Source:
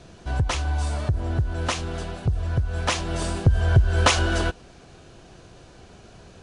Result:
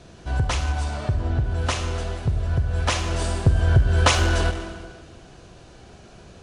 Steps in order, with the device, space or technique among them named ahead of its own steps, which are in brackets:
0:00.84–0:01.44: low-pass filter 5,900 Hz 12 dB per octave
saturated reverb return (on a send at −5 dB: convolution reverb RT60 1.5 s, pre-delay 36 ms + soft clipping −17.5 dBFS, distortion −12 dB)

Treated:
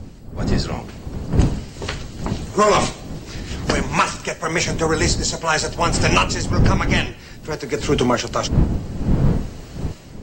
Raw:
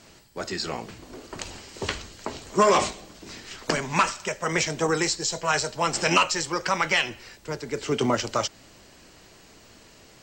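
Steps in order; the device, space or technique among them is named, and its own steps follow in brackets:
smartphone video outdoors (wind on the microphone 170 Hz −25 dBFS; automatic gain control gain up to 14.5 dB; level −3 dB; AAC 48 kbit/s 44,100 Hz)

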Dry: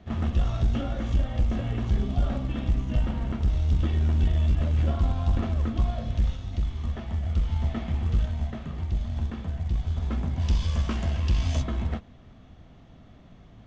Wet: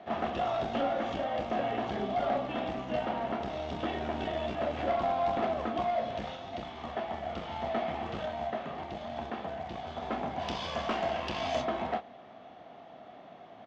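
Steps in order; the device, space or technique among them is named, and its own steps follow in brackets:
intercom (band-pass filter 360–3,700 Hz; parametric band 720 Hz +10.5 dB 0.58 octaves; soft clipping −26.5 dBFS, distortion −17 dB; double-tracking delay 29 ms −11.5 dB)
level +4 dB

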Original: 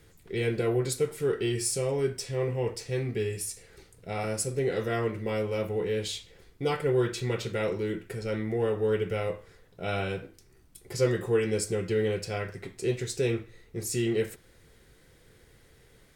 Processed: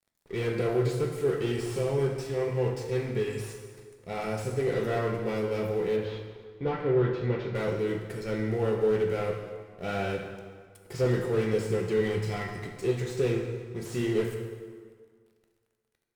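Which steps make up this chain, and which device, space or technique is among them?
0:12.01–0:12.75: comb filter 1 ms, depth 62%
early transistor amplifier (dead-zone distortion −50 dBFS; slew-rate limiting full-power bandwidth 35 Hz)
0:05.96–0:07.55: high-frequency loss of the air 260 metres
dense smooth reverb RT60 1.8 s, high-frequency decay 0.75×, DRR 3 dB

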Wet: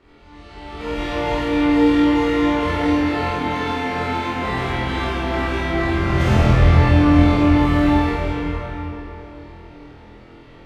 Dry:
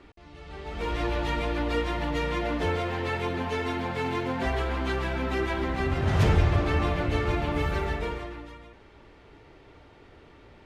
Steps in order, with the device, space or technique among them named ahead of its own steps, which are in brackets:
tunnel (flutter between parallel walls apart 4.1 metres, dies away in 0.68 s; convolution reverb RT60 3.3 s, pre-delay 39 ms, DRR −7.5 dB)
level −4 dB

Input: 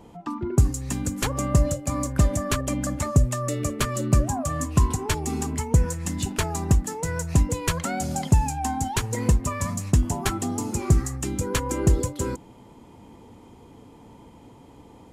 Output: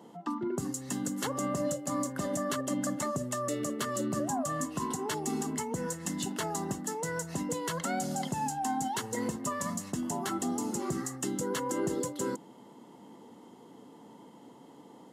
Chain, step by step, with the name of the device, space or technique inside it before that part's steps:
PA system with an anti-feedback notch (high-pass filter 170 Hz 24 dB per octave; Butterworth band-reject 2,400 Hz, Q 6.6; brickwall limiter −19 dBFS, peak gain reduction 9.5 dB)
level −3 dB

